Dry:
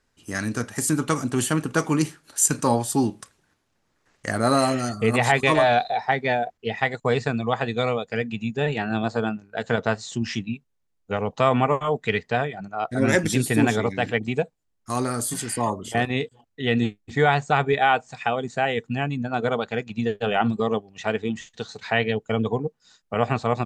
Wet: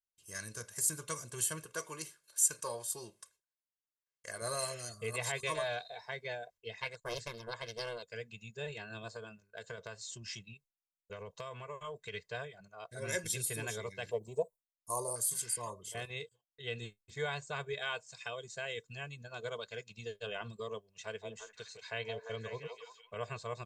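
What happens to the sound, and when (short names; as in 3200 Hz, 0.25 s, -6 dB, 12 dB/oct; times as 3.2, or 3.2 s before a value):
1.65–4.42 tone controls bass -9 dB, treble -3 dB
6.72–8.03 Doppler distortion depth 0.77 ms
9.1–12.14 compressor, threshold -21 dBFS
14.11–15.16 EQ curve 160 Hz 0 dB, 1000 Hz +13 dB, 1500 Hz -28 dB, 11000 Hz +8 dB
17.77–20.27 bell 5000 Hz +5.5 dB 1.4 oct
21.01–23.26 delay with a stepping band-pass 0.173 s, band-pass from 690 Hz, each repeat 0.7 oct, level -2 dB
whole clip: pre-emphasis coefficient 0.8; gate with hold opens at -54 dBFS; comb 1.9 ms, depth 96%; gain -8 dB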